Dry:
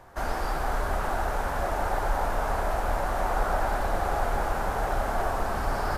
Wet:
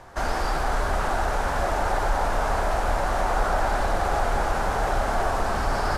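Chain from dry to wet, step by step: treble shelf 4 kHz +10 dB; in parallel at -3 dB: peak limiter -21.5 dBFS, peak gain reduction 8 dB; on the sum: distance through air 61 m

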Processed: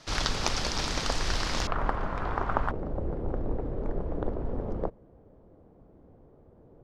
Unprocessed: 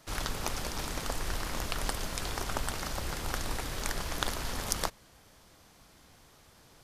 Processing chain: resonant low-pass 5.2 kHz, resonance Q 1.6, from 1.67 s 1.2 kHz, from 2.71 s 470 Hz; trim +5 dB

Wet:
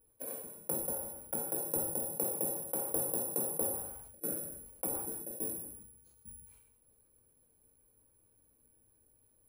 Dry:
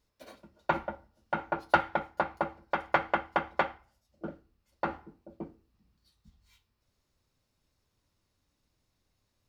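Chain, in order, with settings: median filter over 25 samples; low-pass that closes with the level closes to 440 Hz, closed at -30 dBFS; reverse; compression 4:1, threshold -45 dBFS, peak gain reduction 18 dB; reverse; small resonant body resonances 440/1600/2300 Hz, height 9 dB, ringing for 25 ms; careless resampling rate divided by 4×, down none, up zero stuff; gated-style reverb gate 260 ms falling, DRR 2 dB; decay stretcher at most 48 dB/s

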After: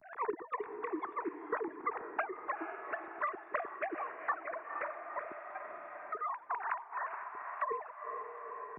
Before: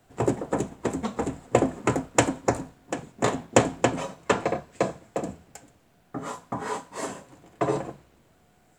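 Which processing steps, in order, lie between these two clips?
formants replaced by sine waves; on a send: echo that smears into a reverb 461 ms, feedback 47%, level -11.5 dB; on the sum: vibrato 0.4 Hz 63 cents; static phaser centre 1.3 kHz, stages 4; three bands compressed up and down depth 70%; trim -2.5 dB

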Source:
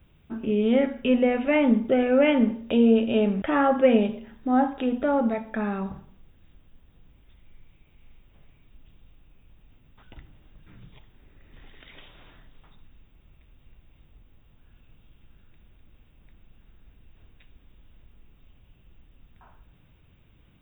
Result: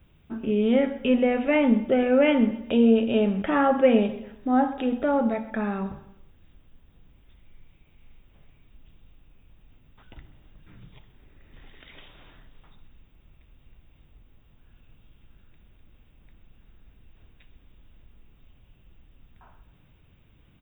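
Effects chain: feedback delay 129 ms, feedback 41%, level -17.5 dB

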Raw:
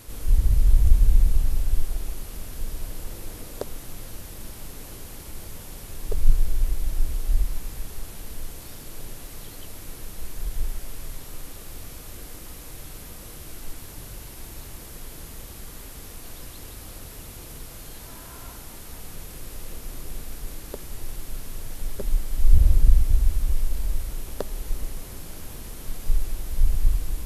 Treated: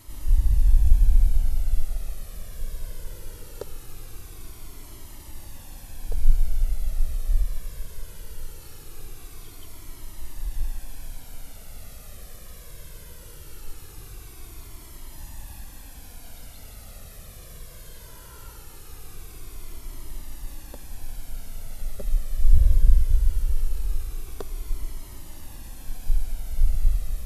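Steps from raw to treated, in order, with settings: 15.13–15.64 s: comb 1.2 ms, depth 50%; Shepard-style flanger falling 0.2 Hz

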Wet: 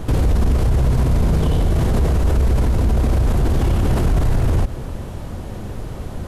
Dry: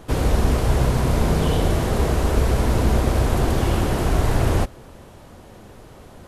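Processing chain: bass shelf 210 Hz +11.5 dB; peak limiter -17.5 dBFS, peak gain reduction 19.5 dB; trim +7.5 dB

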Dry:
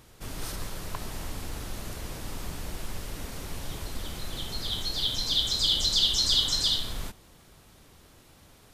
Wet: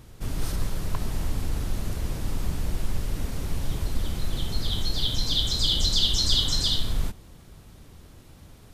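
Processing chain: bass shelf 290 Hz +10.5 dB

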